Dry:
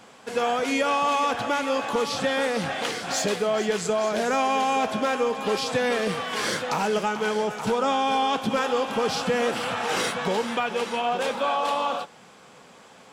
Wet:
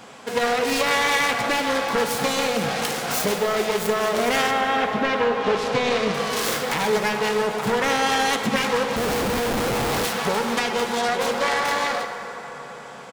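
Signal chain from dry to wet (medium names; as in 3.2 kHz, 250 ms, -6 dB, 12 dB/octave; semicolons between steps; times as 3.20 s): self-modulated delay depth 0.31 ms; 4.50–6.13 s: low-pass 2.4 kHz -> 5.6 kHz 12 dB/octave; in parallel at 0 dB: compression, threshold -33 dBFS, peak gain reduction 12 dB; on the sum: speakerphone echo 120 ms, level -12 dB; on a send at -5 dB: reverberation RT60 5.1 s, pre-delay 3 ms; 8.96–10.05 s: on the sum: Schmitt trigger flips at -24 dBFS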